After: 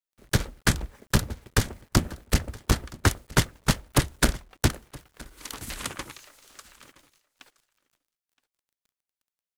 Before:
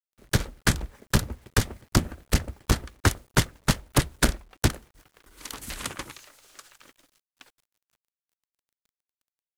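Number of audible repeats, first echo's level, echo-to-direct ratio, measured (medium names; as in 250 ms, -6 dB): 1, -22.0 dB, -22.0 dB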